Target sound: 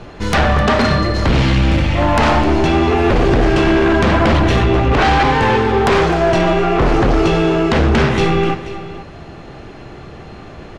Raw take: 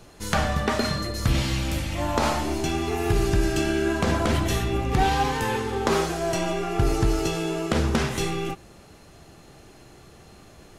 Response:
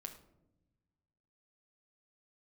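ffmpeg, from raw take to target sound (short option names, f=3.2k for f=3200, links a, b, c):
-filter_complex "[0:a]lowpass=2.9k,aeval=exprs='0.355*sin(PI/2*3.55*val(0)/0.355)':c=same,asplit=2[a][b];[b]aecho=0:1:258|484:0.15|0.168[c];[a][c]amix=inputs=2:normalize=0"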